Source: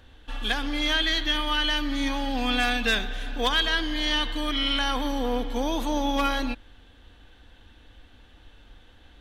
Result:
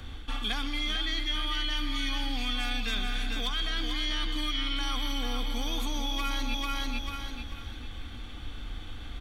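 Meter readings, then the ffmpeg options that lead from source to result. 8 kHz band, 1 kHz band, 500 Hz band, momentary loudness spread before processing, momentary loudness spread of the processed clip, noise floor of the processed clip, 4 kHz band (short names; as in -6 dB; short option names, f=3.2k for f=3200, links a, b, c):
-2.5 dB, -8.0 dB, -13.5 dB, 6 LU, 13 LU, -41 dBFS, -4.5 dB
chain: -filter_complex "[0:a]aecho=1:1:0.9:0.47,acrossover=split=120|1600[a][b][c];[a]acompressor=threshold=-34dB:ratio=4[d];[b]acompressor=threshold=-38dB:ratio=4[e];[c]acompressor=threshold=-31dB:ratio=4[f];[d][e][f]amix=inputs=3:normalize=0,bandreject=f=950:w=6.4,aecho=1:1:443|886|1329|1772:0.501|0.155|0.0482|0.0149,areverse,acompressor=threshold=-36dB:ratio=6,areverse,volume=8.5dB"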